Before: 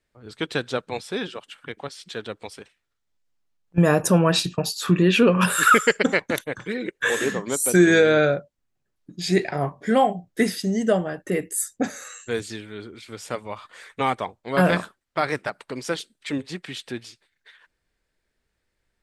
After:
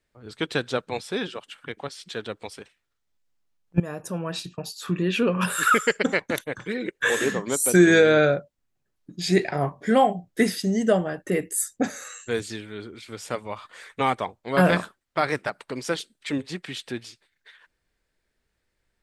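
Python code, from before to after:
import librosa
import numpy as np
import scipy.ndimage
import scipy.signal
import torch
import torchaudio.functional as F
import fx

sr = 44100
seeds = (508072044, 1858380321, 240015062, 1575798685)

y = fx.edit(x, sr, fx.fade_in_from(start_s=3.8, length_s=3.26, floor_db=-18.0), tone=tone)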